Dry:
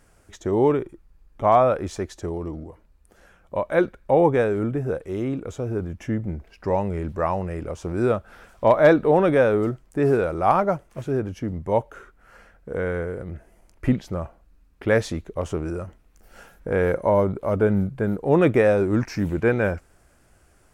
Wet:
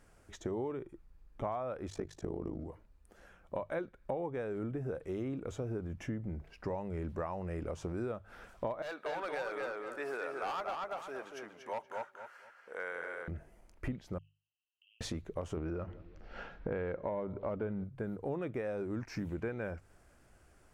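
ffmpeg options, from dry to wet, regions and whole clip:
ffmpeg -i in.wav -filter_complex "[0:a]asettb=1/sr,asplit=3[link_01][link_02][link_03];[link_01]atrim=end=1.904[link_04];[link_02]atrim=start=1.9:end=2.6,asetpts=PTS-STARTPTS,afade=type=in:duration=0.004:curve=qsin,afade=type=out:start_time=0.696:duration=0.004:curve=qsin,equalizer=frequency=280:width_type=o:width=2.4:gain=5,tremolo=f=52:d=0.919[link_05];[link_03]atrim=start=2.596[link_06];[link_04][link_05]acrossfade=duration=0.004:curve1=hsin:curve2=qsin[link_07];[link_07][link_06]acrossfade=duration=0.004:curve1=qsin:curve2=hsin,asettb=1/sr,asplit=3[link_08][link_09][link_10];[link_08]atrim=end=8.824[link_11];[link_09]atrim=start=8.82:end=13.28,asetpts=PTS-STARTPTS,afade=type=in:duration=0.004:curve=qsin,afade=type=out:start_time=4.456:duration=0.004:curve=qsin,highpass=920,asoftclip=type=hard:threshold=-23dB,asplit=2[link_12][link_13];[link_13]adelay=236,lowpass=frequency=4600:poles=1,volume=-3.5dB,asplit=2[link_14][link_15];[link_15]adelay=236,lowpass=frequency=4600:poles=1,volume=0.28,asplit=2[link_16][link_17];[link_17]adelay=236,lowpass=frequency=4600:poles=1,volume=0.28,asplit=2[link_18][link_19];[link_19]adelay=236,lowpass=frequency=4600:poles=1,volume=0.28[link_20];[link_12][link_14][link_16][link_18][link_20]amix=inputs=5:normalize=0,atrim=end_sample=196686[link_21];[link_10]atrim=start=13.276[link_22];[link_11][link_21]acrossfade=duration=0.004:curve1=hsin:curve2=qsin[link_23];[link_23][link_22]acrossfade=duration=0.004:curve1=qsin:curve2=hsin,asettb=1/sr,asplit=3[link_24][link_25][link_26];[link_24]atrim=end=14.184[link_27];[link_25]atrim=start=14.18:end=15.01,asetpts=PTS-STARTPTS,afade=type=in:duration=0.004:curve=qsin,afade=type=out:start_time=0.826:duration=0.004:curve=qsin,asuperpass=centerf=2900:order=12:qfactor=4.9,acompressor=threshold=-58dB:ratio=6:attack=3.2:release=140:knee=1:detection=peak[link_28];[link_26]atrim=start=15.006[link_29];[link_27][link_28]acrossfade=duration=0.004:curve1=hsin:curve2=qsin[link_30];[link_30][link_29]acrossfade=duration=0.004:curve1=qsin:curve2=hsin,asettb=1/sr,asplit=3[link_31][link_32][link_33];[link_31]atrim=end=15.574[link_34];[link_32]atrim=start=15.57:end=17.84,asetpts=PTS-STARTPTS,afade=type=in:duration=0.004:curve=qsin,afade=type=out:start_time=2.266:duration=0.004:curve=qsin,lowpass=frequency=4300:width=0.5412,lowpass=frequency=4300:width=1.3066,acontrast=50,asplit=2[link_35][link_36];[link_36]adelay=175,lowpass=frequency=810:poles=1,volume=-23dB,asplit=2[link_37][link_38];[link_38]adelay=175,lowpass=frequency=810:poles=1,volume=0.47,asplit=2[link_39][link_40];[link_40]adelay=175,lowpass=frequency=810:poles=1,volume=0.47[link_41];[link_35][link_37][link_39][link_41]amix=inputs=4:normalize=0,atrim=end_sample=100107[link_42];[link_33]atrim=start=17.836[link_43];[link_34][link_42]acrossfade=duration=0.004:curve1=hsin:curve2=qsin[link_44];[link_44][link_43]acrossfade=duration=0.004:curve1=qsin:curve2=hsin,highshelf=frequency=6100:gain=-5,acompressor=threshold=-29dB:ratio=12,bandreject=frequency=50:width_type=h:width=6,bandreject=frequency=100:width_type=h:width=6,bandreject=frequency=150:width_type=h:width=6,volume=-5dB" out.wav

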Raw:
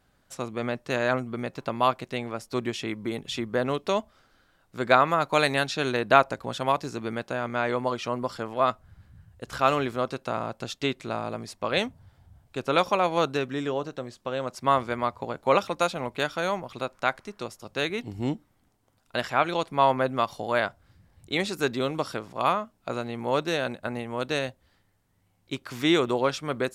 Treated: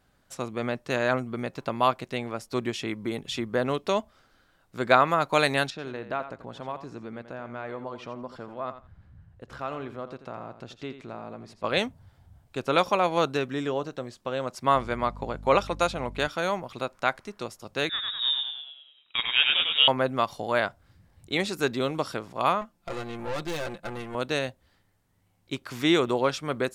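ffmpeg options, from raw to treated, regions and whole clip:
ffmpeg -i in.wav -filter_complex "[0:a]asettb=1/sr,asplit=3[link_01][link_02][link_03];[link_01]atrim=end=5.704[link_04];[link_02]atrim=start=5.7:end=11.64,asetpts=PTS-STARTPTS,afade=type=in:duration=0.004:curve=qsin,afade=type=out:start_time=5.936:duration=0.004:curve=qsin,lowpass=frequency=1800:poles=1,acompressor=threshold=-47dB:ratio=1.5:attack=3.2:release=140:knee=1:detection=peak,aecho=1:1:85|170:0.266|0.0452,atrim=end_sample=261954[link_05];[link_03]atrim=start=11.636[link_06];[link_04][link_05]acrossfade=duration=0.004:curve1=hsin:curve2=qsin[link_07];[link_07][link_06]acrossfade=duration=0.004:curve1=qsin:curve2=hsin,asettb=1/sr,asplit=3[link_08][link_09][link_10];[link_08]atrim=end=14.754[link_11];[link_09]atrim=start=14.75:end=16.28,asetpts=PTS-STARTPTS,afade=type=in:duration=0.004:curve=qsin,afade=type=out:start_time=1.526:duration=0.004:curve=qsin,lowpass=11000,aeval=exprs='val(0)+0.01*(sin(2*PI*50*n/s)+sin(2*PI*2*50*n/s)/2+sin(2*PI*3*50*n/s)/3+sin(2*PI*4*50*n/s)/4+sin(2*PI*5*50*n/s)/5)':channel_layout=same[link_12];[link_10]atrim=start=16.276[link_13];[link_11][link_12]acrossfade=duration=0.004:curve1=hsin:curve2=qsin[link_14];[link_14][link_13]acrossfade=duration=0.004:curve1=qsin:curve2=hsin,asettb=1/sr,asplit=3[link_15][link_16][link_17];[link_15]atrim=end=17.894[link_18];[link_16]atrim=start=17.89:end=19.88,asetpts=PTS-STARTPTS,afade=type=in:duration=0.004:curve=qsin,afade=type=out:start_time=1.986:duration=0.004:curve=qsin,asplit=8[link_19][link_20][link_21][link_22][link_23][link_24][link_25][link_26];[link_20]adelay=100,afreqshift=68,volume=-3dB[link_27];[link_21]adelay=200,afreqshift=136,volume=-8.5dB[link_28];[link_22]adelay=300,afreqshift=204,volume=-14dB[link_29];[link_23]adelay=400,afreqshift=272,volume=-19.5dB[link_30];[link_24]adelay=500,afreqshift=340,volume=-25.1dB[link_31];[link_25]adelay=600,afreqshift=408,volume=-30.6dB[link_32];[link_26]adelay=700,afreqshift=476,volume=-36.1dB[link_33];[link_19][link_27][link_28][link_29][link_30][link_31][link_32][link_33]amix=inputs=8:normalize=0,atrim=end_sample=87759,lowpass=frequency=3300:width_type=q:width=0.5098,lowpass=frequency=3300:width_type=q:width=0.6013,lowpass=frequency=3300:width_type=q:width=0.9,lowpass=frequency=3300:width_type=q:width=2.563,afreqshift=-3900[link_34];[link_17]atrim=start=19.876[link_35];[link_18][link_34]acrossfade=duration=0.004:curve1=hsin:curve2=qsin[link_36];[link_36][link_35]acrossfade=duration=0.004:curve1=qsin:curve2=hsin,asettb=1/sr,asplit=3[link_37][link_38][link_39];[link_37]atrim=end=22.614[link_40];[link_38]atrim=start=22.61:end=24.15,asetpts=PTS-STARTPTS,afade=type=in:duration=0.004:curve=qsin,afade=type=out:start_time=1.536:duration=0.004:curve=qsin,aecho=1:1:5.8:0.95,atrim=end_sample=67914,aeval=exprs='(tanh(28.2*val(0)+0.7)-tanh(0.7))/28.2':channel_layout=same[link_41];[link_39]atrim=start=24.146[link_42];[link_40][link_41]acrossfade=duration=0.004:curve1=hsin:curve2=qsin[link_43];[link_43][link_42]acrossfade=duration=0.004:curve1=qsin:curve2=hsin" out.wav

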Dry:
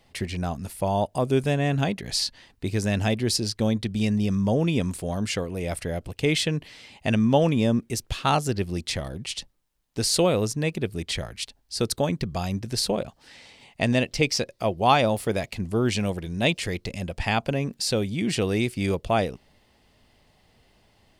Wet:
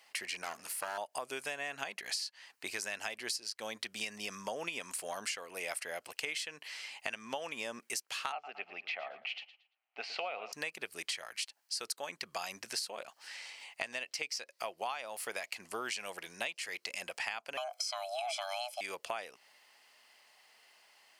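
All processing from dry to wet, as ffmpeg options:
ffmpeg -i in.wav -filter_complex "[0:a]asettb=1/sr,asplit=3[link_01][link_02][link_03];[link_01]atrim=end=0.424[link_04];[link_02]atrim=start=0.42:end=0.98,asetpts=PTS-STARTPTS,afade=type=in:duration=0.004:curve=qsin,afade=type=out:start_time=0.556:duration=0.004:curve=qsin,bandreject=frequency=60:width_type=h:width=6,bandreject=frequency=120:width_type=h:width=6,bandreject=frequency=180:width_type=h:width=6,bandreject=frequency=240:width_type=h:width=6,bandreject=frequency=300:width_type=h:width=6,bandreject=frequency=360:width_type=h:width=6,bandreject=frequency=420:width_type=h:width=6,bandreject=frequency=480:width_type=h:width=6,bandreject=frequency=540:width_type=h:width=6,aeval=exprs='clip(val(0),-1,0.0133)':channel_layout=same[link_05];[link_03]atrim=start=0.976[link_06];[link_04][link_05]acrossfade=duration=0.004:curve1=hsin:curve2=qsin[link_07];[link_07][link_06]acrossfade=duration=0.004:curve1=qsin:curve2=hsin,asettb=1/sr,asplit=3[link_08][link_09][link_10];[link_08]atrim=end=8.324[link_11];[link_09]atrim=start=8.32:end=10.53,asetpts=PTS-STARTPTS,afade=type=in:duration=0.004:curve=qsin,afade=type=out:start_time=2.206:duration=0.004:curve=qsin,highpass=320,equalizer=frequency=340:width_type=q:width=4:gain=-9,equalizer=frequency=510:width_type=q:width=4:gain=-5,equalizer=frequency=730:width_type=q:width=4:gain=9,equalizer=frequency=1000:width_type=q:width=4:gain=-8,equalizer=frequency=1700:width_type=q:width=4:gain=-9,equalizer=frequency=2500:width_type=q:width=4:gain=4,lowpass=frequency=2600:width=0.5412,lowpass=frequency=2600:width=1.3066,aecho=1:1:114|228|342:0.178|0.0445|0.0111,atrim=end_sample=97461[link_12];[link_10]atrim=start=10.526[link_13];[link_11][link_12]acrossfade=duration=0.004:curve1=hsin:curve2=qsin[link_14];[link_14][link_13]acrossfade=duration=0.004:curve1=qsin:curve2=hsin,asettb=1/sr,asplit=3[link_15][link_16][link_17];[link_15]atrim=end=17.574[link_18];[link_16]atrim=start=17.57:end=18.81,asetpts=PTS-STARTPTS,afade=type=in:duration=0.004:curve=qsin,afade=type=out:start_time=1.236:duration=0.004:curve=qsin,aecho=1:1:1.1:0.99,atrim=end_sample=54684,acrossover=split=5700[link_19][link_20];[link_20]acompressor=threshold=-38dB:ratio=4:attack=1:release=60[link_21];[link_19][link_21]amix=inputs=2:normalize=0,afreqshift=490[link_22];[link_17]atrim=start=18.806[link_23];[link_18][link_22]acrossfade=duration=0.004:curve1=hsin:curve2=qsin[link_24];[link_24][link_23]acrossfade=duration=0.004:curve1=qsin:curve2=hsin,highpass=1100,equalizer=frequency=3600:width_type=o:width=0.23:gain=-8,acompressor=threshold=-38dB:ratio=16,volume=3.5dB" out.wav

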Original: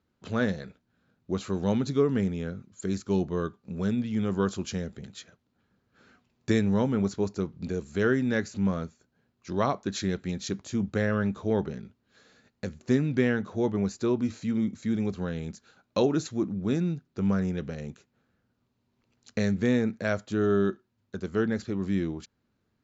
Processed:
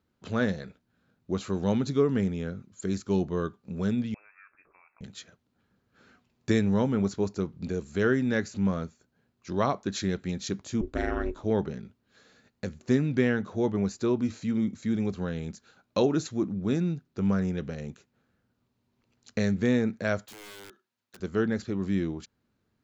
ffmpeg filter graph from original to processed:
ffmpeg -i in.wav -filter_complex "[0:a]asettb=1/sr,asplit=3[link_01][link_02][link_03];[link_01]atrim=end=4.144[link_04];[link_02]atrim=start=4.14:end=5.01,asetpts=PTS-STARTPTS,afade=type=in:duration=0.004:curve=qsin,afade=type=out:start_time=0.866:duration=0.004:curve=qsin,highpass=1000,acompressor=threshold=-56dB:ratio=3:attack=3.2:release=140:knee=1:detection=peak,lowpass=frequency=2400:width_type=q:width=0.5098,lowpass=frequency=2400:width_type=q:width=0.6013,lowpass=frequency=2400:width_type=q:width=0.9,lowpass=frequency=2400:width_type=q:width=2.563,afreqshift=-2800[link_05];[link_03]atrim=start=5.006[link_06];[link_04][link_05]acrossfade=duration=0.004:curve1=hsin:curve2=qsin[link_07];[link_07][link_06]acrossfade=duration=0.004:curve1=qsin:curve2=hsin,asettb=1/sr,asplit=3[link_08][link_09][link_10];[link_08]atrim=end=10.814[link_11];[link_09]atrim=start=10.81:end=11.44,asetpts=PTS-STARTPTS,afade=type=in:duration=0.004:curve=qsin,afade=type=out:start_time=0.626:duration=0.004:curve=qsin,bandreject=frequency=60:width_type=h:width=6,bandreject=frequency=120:width_type=h:width=6,aeval=exprs='val(0)*sin(2*PI*170*n/s)':channel_layout=same[link_12];[link_10]atrim=start=11.436[link_13];[link_11][link_12]acrossfade=duration=0.004:curve1=hsin:curve2=qsin[link_14];[link_14][link_13]acrossfade=duration=0.004:curve1=qsin:curve2=hsin,asettb=1/sr,asplit=3[link_15][link_16][link_17];[link_15]atrim=end=20.264[link_18];[link_16]atrim=start=20.26:end=21.2,asetpts=PTS-STARTPTS,afade=type=in:duration=0.004:curve=qsin,afade=type=out:start_time=0.936:duration=0.004:curve=qsin,highpass=frequency=1200:poles=1,acompressor=threshold=-42dB:ratio=6:attack=3.2:release=140:knee=1:detection=peak,aeval=exprs='(mod(106*val(0)+1,2)-1)/106':channel_layout=same[link_19];[link_17]atrim=start=21.196[link_20];[link_18][link_19]acrossfade=duration=0.004:curve1=hsin:curve2=qsin[link_21];[link_21][link_20]acrossfade=duration=0.004:curve1=qsin:curve2=hsin" out.wav

